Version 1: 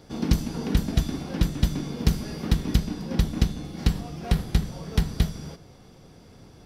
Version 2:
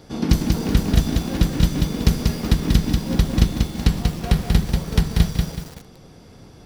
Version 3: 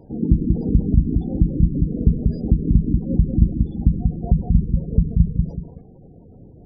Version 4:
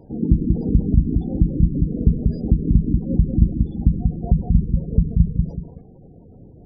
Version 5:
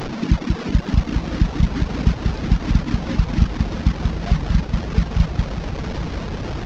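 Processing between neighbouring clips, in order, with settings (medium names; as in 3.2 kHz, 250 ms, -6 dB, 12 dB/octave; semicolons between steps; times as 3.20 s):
bit-crushed delay 188 ms, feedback 35%, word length 7-bit, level -3.5 dB; trim +4.5 dB
tilt shelf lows +4 dB, about 880 Hz; spectral gate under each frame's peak -20 dB strong; wow and flutter 28 cents; trim -2.5 dB
no audible change
one-bit delta coder 32 kbps, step -19.5 dBFS; reverb removal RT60 0.83 s; echo that smears into a reverb 965 ms, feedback 55%, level -9.5 dB; trim -1 dB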